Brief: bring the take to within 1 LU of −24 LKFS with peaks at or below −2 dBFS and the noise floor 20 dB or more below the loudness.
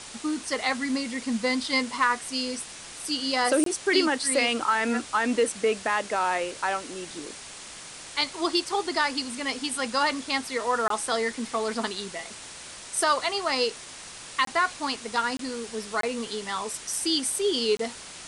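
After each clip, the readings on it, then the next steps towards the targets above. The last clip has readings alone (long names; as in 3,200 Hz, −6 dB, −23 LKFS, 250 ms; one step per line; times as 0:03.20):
number of dropouts 6; longest dropout 23 ms; background noise floor −43 dBFS; target noise floor −47 dBFS; integrated loudness −26.5 LKFS; sample peak −10.0 dBFS; target loudness −24.0 LKFS
→ repair the gap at 0:03.64/0:10.88/0:14.45/0:15.37/0:16.01/0:17.77, 23 ms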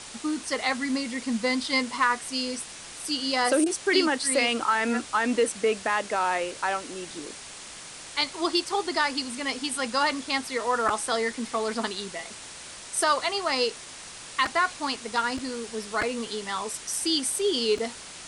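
number of dropouts 0; background noise floor −43 dBFS; target noise floor −47 dBFS
→ broadband denoise 6 dB, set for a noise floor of −43 dBFS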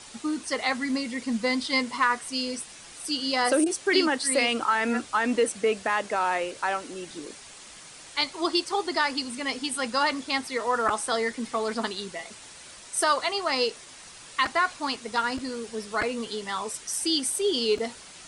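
background noise floor −46 dBFS; target noise floor −47 dBFS
→ broadband denoise 6 dB, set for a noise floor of −46 dBFS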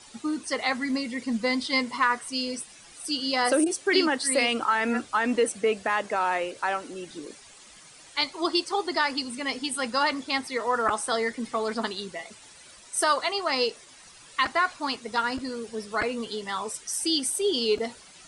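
background noise floor −50 dBFS; integrated loudness −26.5 LKFS; sample peak −10.0 dBFS; target loudness −24.0 LKFS
→ level +2.5 dB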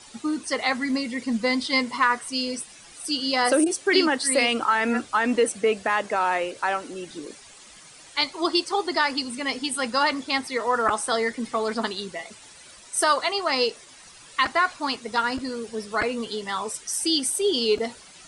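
integrated loudness −24.0 LKFS; sample peak −7.5 dBFS; background noise floor −48 dBFS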